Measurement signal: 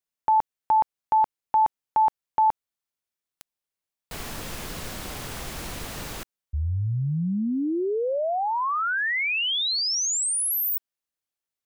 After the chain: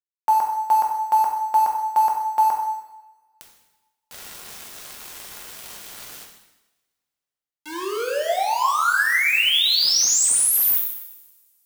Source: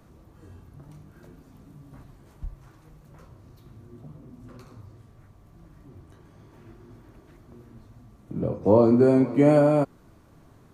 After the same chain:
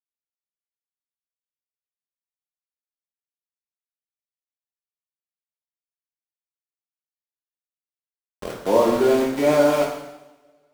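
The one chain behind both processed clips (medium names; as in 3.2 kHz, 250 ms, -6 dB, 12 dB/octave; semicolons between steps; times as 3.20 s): high-pass 810 Hz 6 dB/octave; small samples zeroed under -31.5 dBFS; two-slope reverb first 0.91 s, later 2.5 s, from -27 dB, DRR -1 dB; trim +3.5 dB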